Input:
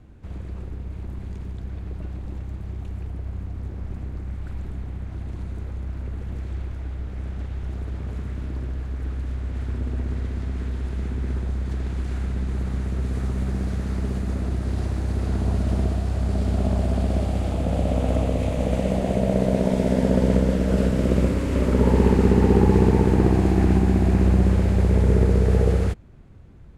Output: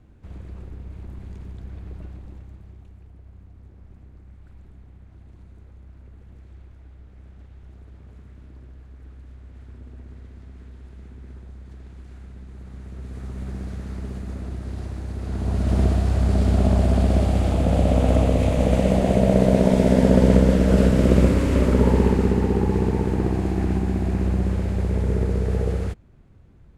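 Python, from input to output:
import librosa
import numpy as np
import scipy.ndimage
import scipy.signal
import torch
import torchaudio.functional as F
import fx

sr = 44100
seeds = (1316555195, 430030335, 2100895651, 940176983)

y = fx.gain(x, sr, db=fx.line((1.97, -4.0), (2.98, -14.5), (12.53, -14.5), (13.5, -6.0), (15.19, -6.0), (15.83, 4.0), (21.44, 4.0), (22.53, -4.5)))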